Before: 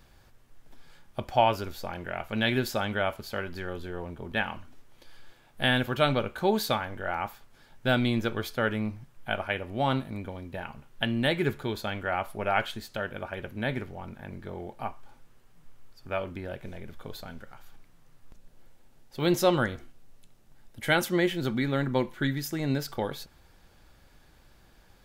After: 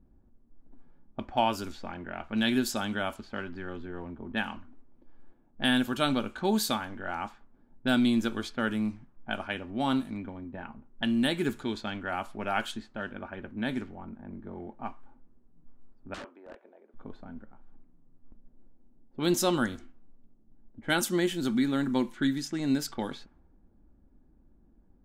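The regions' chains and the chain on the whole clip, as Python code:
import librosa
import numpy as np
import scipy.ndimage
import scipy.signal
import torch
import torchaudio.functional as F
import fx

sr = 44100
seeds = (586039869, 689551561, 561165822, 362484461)

y = fx.chain(x, sr, fx.highpass(hz=460.0, slope=24),
    fx.notch(hz=2100.0, q=22.0),
    fx.overflow_wrap(gain_db=31.0), at=(16.14, 16.94))
y = fx.dynamic_eq(y, sr, hz=2100.0, q=3.5, threshold_db=-47.0, ratio=4.0, max_db=-6)
y = fx.env_lowpass(y, sr, base_hz=390.0, full_db=-25.0)
y = fx.graphic_eq(y, sr, hz=(125, 250, 500, 8000), db=(-9, 9, -7, 9))
y = y * librosa.db_to_amplitude(-1.5)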